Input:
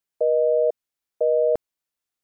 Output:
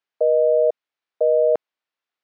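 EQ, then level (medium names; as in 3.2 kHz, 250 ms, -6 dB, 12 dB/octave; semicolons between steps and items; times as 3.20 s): high-pass 690 Hz 6 dB/octave; distance through air 230 m; +7.5 dB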